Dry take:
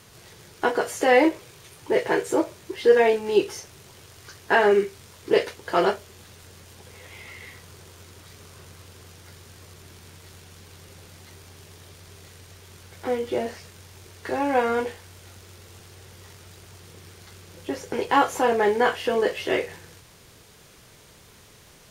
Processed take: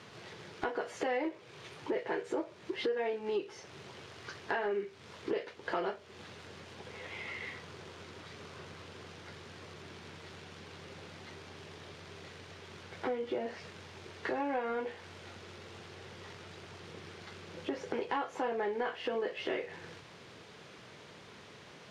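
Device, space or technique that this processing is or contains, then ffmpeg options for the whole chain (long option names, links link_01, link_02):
AM radio: -af "highpass=150,lowpass=3700,acompressor=threshold=-34dB:ratio=5,asoftclip=type=tanh:threshold=-23.5dB,volume=1.5dB"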